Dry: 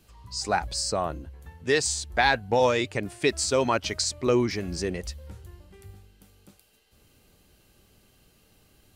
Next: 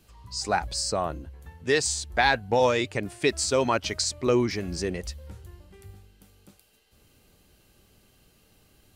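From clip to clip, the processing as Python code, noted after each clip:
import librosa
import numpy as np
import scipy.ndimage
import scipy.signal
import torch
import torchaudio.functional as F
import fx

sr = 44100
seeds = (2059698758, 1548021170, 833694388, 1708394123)

y = x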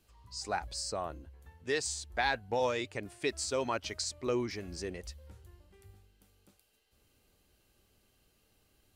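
y = fx.peak_eq(x, sr, hz=160.0, db=-4.5, octaves=1.0)
y = F.gain(torch.from_numpy(y), -9.0).numpy()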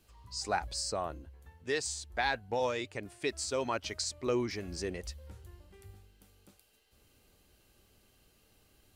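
y = fx.rider(x, sr, range_db=4, speed_s=2.0)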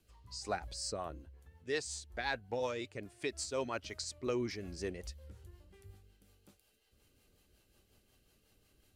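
y = fx.rotary(x, sr, hz=5.5)
y = F.gain(torch.from_numpy(y), -2.0).numpy()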